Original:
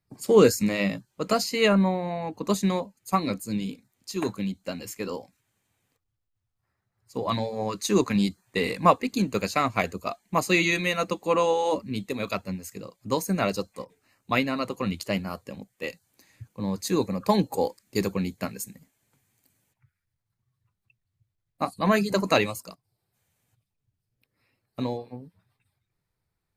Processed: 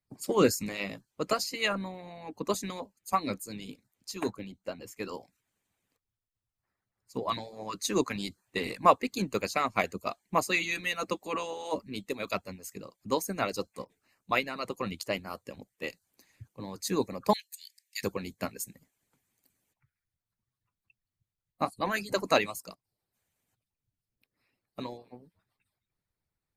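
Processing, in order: 4.30–4.97 s: treble shelf 2.2 kHz -8.5 dB; 17.33–18.04 s: steep high-pass 1.7 kHz 96 dB/octave; harmonic-percussive split harmonic -14 dB; trim -2 dB

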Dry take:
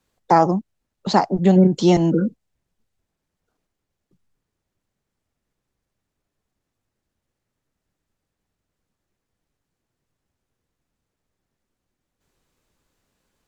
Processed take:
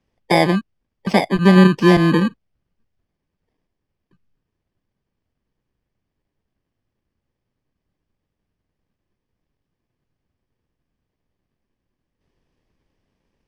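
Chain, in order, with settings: bit-reversed sample order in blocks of 32 samples; low-pass 3.4 kHz 12 dB/octave; trim +3.5 dB

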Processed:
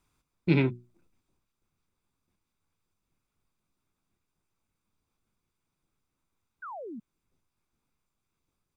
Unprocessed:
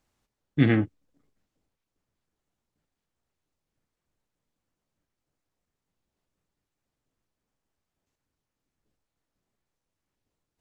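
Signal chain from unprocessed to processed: hum notches 50/100/150/200/250/300 Hz; comb 1 ms, depth 46%; in parallel at -1 dB: compression, threshold -30 dBFS, peak gain reduction 15 dB; on the sum: tape speed +21%; painted sound fall, 6.62–7.00 s, 200–1600 Hz -35 dBFS; trim -5 dB

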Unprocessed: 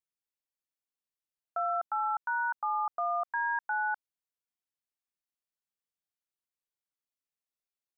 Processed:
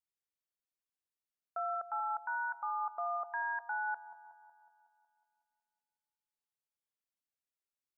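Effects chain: feedback echo behind a low-pass 184 ms, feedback 59%, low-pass 710 Hz, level -9 dB; trim -5.5 dB

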